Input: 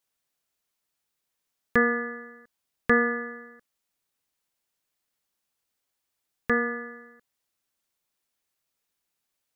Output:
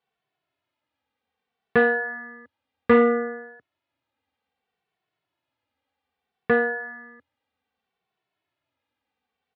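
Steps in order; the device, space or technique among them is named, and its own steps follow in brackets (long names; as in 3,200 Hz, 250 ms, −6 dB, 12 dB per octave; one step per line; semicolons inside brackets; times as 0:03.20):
barber-pole flanger into a guitar amplifier (barber-pole flanger 2.2 ms −0.63 Hz; soft clipping −19 dBFS, distortion −14 dB; loudspeaker in its box 77–3,400 Hz, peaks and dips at 84 Hz +9 dB, 120 Hz +4 dB, 270 Hz +5 dB, 460 Hz +4 dB, 780 Hz +8 dB)
level +7 dB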